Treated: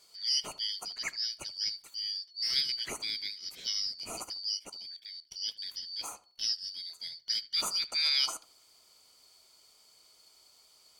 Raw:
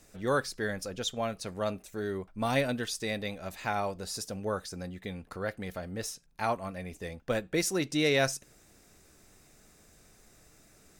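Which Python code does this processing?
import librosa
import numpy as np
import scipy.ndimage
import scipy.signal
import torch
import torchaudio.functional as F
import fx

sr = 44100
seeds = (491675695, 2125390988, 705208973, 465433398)

y = fx.band_shuffle(x, sr, order='4321')
y = fx.level_steps(y, sr, step_db=14, at=(4.57, 5.32))
y = fx.echo_filtered(y, sr, ms=76, feedback_pct=26, hz=1900.0, wet_db=-16.0)
y = y * 10.0 ** (-2.5 / 20.0)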